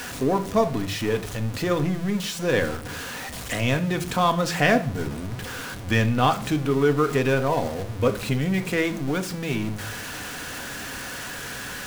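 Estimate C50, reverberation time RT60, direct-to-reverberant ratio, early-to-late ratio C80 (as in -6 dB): 15.0 dB, 0.50 s, 7.0 dB, 19.0 dB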